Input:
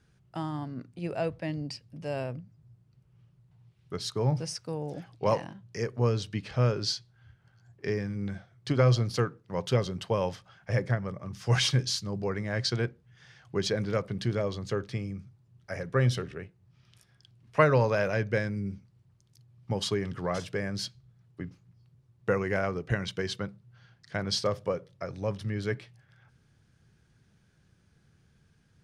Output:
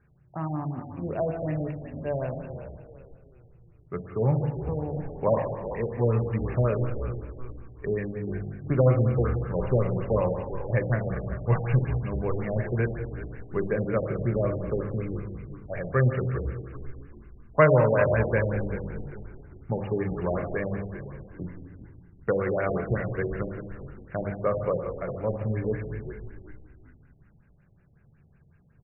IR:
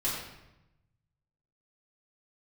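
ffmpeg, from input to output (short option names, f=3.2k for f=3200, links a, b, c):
-filter_complex "[0:a]asplit=5[a][b][c][d][e];[b]adelay=394,afreqshift=-58,volume=-12.5dB[f];[c]adelay=788,afreqshift=-116,volume=-20.9dB[g];[d]adelay=1182,afreqshift=-174,volume=-29.3dB[h];[e]adelay=1576,afreqshift=-232,volume=-37.7dB[i];[a][f][g][h][i]amix=inputs=5:normalize=0,asplit=2[j][k];[1:a]atrim=start_sample=2205,asetrate=25137,aresample=44100[l];[k][l]afir=irnorm=-1:irlink=0,volume=-12.5dB[m];[j][m]amix=inputs=2:normalize=0,afftfilt=real='re*lt(b*sr/1024,810*pow(2900/810,0.5+0.5*sin(2*PI*5.4*pts/sr)))':imag='im*lt(b*sr/1024,810*pow(2900/810,0.5+0.5*sin(2*PI*5.4*pts/sr)))':win_size=1024:overlap=0.75"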